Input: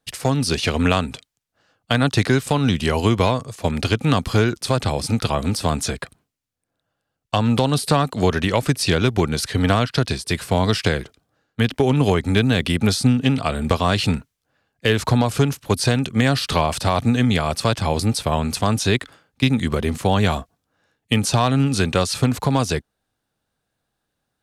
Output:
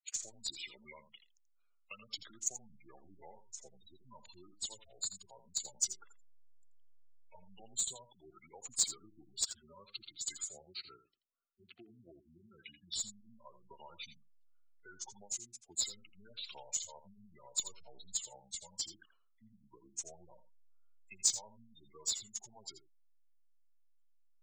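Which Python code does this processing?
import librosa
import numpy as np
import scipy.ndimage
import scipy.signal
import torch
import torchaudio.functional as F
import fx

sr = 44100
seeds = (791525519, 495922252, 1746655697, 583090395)

p1 = fx.pitch_heads(x, sr, semitones=-3.0)
p2 = fx.spec_gate(p1, sr, threshold_db=-10, keep='strong')
p3 = fx.bandpass_q(p2, sr, hz=6700.0, q=5.7)
p4 = fx.backlash(p3, sr, play_db=-28.5)
p5 = p3 + F.gain(torch.from_numpy(p4), -7.5).numpy()
p6 = p5 + 10.0 ** (-12.5 / 20.0) * np.pad(p5, (int(83 * sr / 1000.0), 0))[:len(p5)]
y = F.gain(torch.from_numpy(p6), 4.0).numpy()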